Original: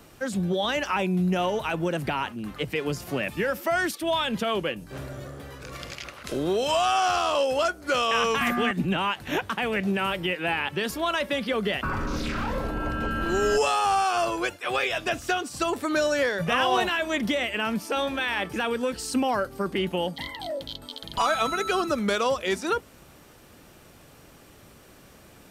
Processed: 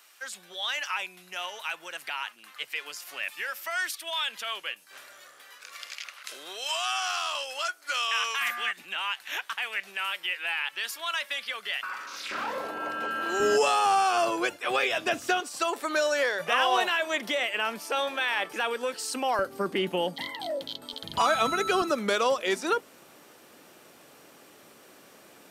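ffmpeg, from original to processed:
-af "asetnsamples=n=441:p=0,asendcmd='12.31 highpass f 510;13.4 highpass f 210;15.4 highpass f 510;19.39 highpass f 230;20.93 highpass f 89;21.82 highpass f 280',highpass=1.5k"

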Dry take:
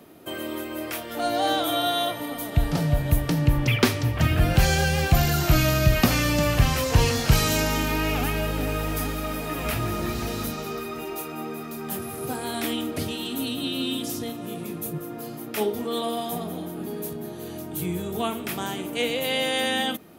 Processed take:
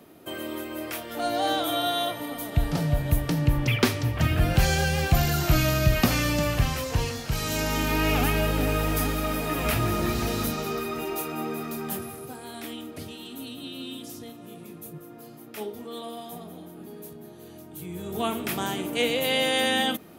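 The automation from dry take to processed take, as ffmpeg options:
-af "volume=21dB,afade=t=out:st=6.27:d=1.03:silence=0.375837,afade=t=in:st=7.3:d=0.84:silence=0.237137,afade=t=out:st=11.73:d=0.55:silence=0.266073,afade=t=in:st=17.89:d=0.46:silence=0.298538"

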